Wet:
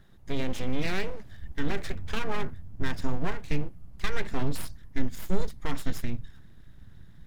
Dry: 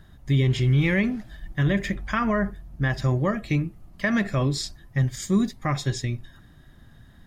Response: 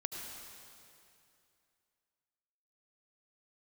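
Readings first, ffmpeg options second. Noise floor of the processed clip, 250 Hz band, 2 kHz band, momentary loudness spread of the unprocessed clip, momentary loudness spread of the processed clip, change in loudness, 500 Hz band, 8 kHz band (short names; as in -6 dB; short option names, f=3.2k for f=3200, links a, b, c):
-49 dBFS, -10.0 dB, -8.0 dB, 10 LU, 10 LU, -9.5 dB, -6.5 dB, -8.0 dB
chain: -af "aeval=exprs='abs(val(0))':c=same,asubboost=boost=3:cutoff=210,volume=-5.5dB"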